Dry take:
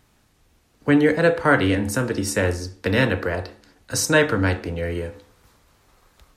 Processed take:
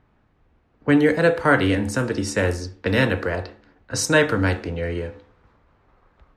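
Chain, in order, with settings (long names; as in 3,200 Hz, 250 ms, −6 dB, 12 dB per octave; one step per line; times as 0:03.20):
low-pass that shuts in the quiet parts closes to 1,700 Hz, open at −17 dBFS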